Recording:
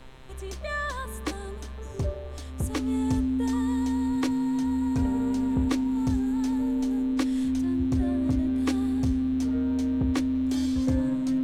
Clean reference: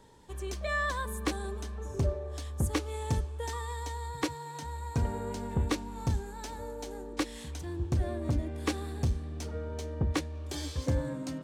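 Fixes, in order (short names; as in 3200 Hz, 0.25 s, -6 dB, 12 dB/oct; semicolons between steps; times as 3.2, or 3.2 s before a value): de-hum 130.5 Hz, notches 32; notch 260 Hz, Q 30; noise print and reduce 6 dB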